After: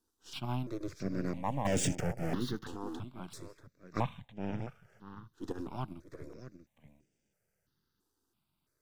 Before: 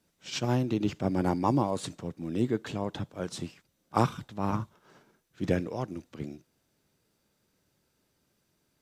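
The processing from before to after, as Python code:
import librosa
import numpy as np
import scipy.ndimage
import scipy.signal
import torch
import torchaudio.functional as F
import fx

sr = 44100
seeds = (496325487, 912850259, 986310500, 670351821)

y = np.where(x < 0.0, 10.0 ** (-7.0 / 20.0) * x, x)
y = fx.leveller(y, sr, passes=5, at=(1.65, 2.35))
y = fx.high_shelf_res(y, sr, hz=5000.0, db=-9.5, q=1.5, at=(3.96, 4.63))
y = fx.over_compress(y, sr, threshold_db=-33.0, ratio=-0.5, at=(5.51, 5.92), fade=0.02)
y = y + 10.0 ** (-11.5 / 20.0) * np.pad(y, (int(637 * sr / 1000.0), 0))[:len(y)]
y = fx.phaser_held(y, sr, hz=3.0, low_hz=600.0, high_hz=4100.0)
y = y * librosa.db_to_amplitude(-3.5)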